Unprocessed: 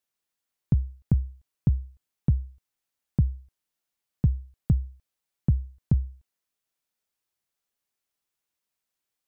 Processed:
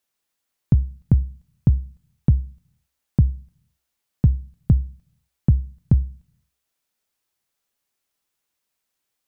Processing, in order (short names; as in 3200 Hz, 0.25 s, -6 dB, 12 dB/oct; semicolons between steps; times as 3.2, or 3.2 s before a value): on a send: synth low-pass 970 Hz, resonance Q 2 + reverb RT60 0.45 s, pre-delay 3 ms, DRR 22.5 dB; on the sum: gain +6 dB